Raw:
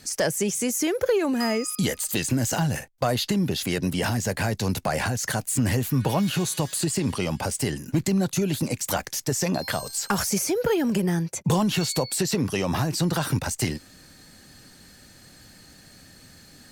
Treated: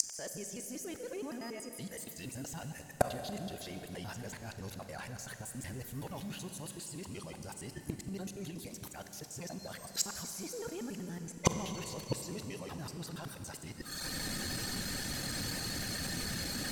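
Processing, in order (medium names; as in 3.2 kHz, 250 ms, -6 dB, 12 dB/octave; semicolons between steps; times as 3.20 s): time reversed locally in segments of 94 ms; reverb removal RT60 0.59 s; transient shaper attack -7 dB, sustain 0 dB; in parallel at -1 dB: peak limiter -25.5 dBFS, peak gain reduction 11.5 dB; on the sum: inverted gate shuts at -19 dBFS, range -28 dB; Schroeder reverb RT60 3.6 s, combs from 31 ms, DRR 7 dB; trim +8 dB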